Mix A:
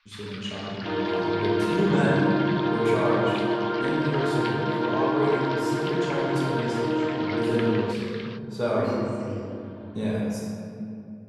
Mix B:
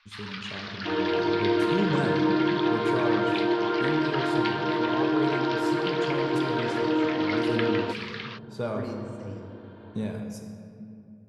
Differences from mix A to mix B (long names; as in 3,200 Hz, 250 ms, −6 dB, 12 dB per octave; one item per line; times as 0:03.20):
speech: send −11.0 dB
first sound +4.0 dB
master: add low-shelf EQ 170 Hz +7 dB